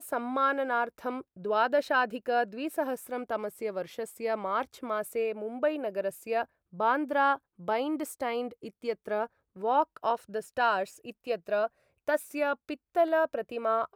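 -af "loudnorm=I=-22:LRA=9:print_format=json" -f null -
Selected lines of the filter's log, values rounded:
"input_i" : "-30.8",
"input_tp" : "-13.7",
"input_lra" : "2.4",
"input_thresh" : "-40.8",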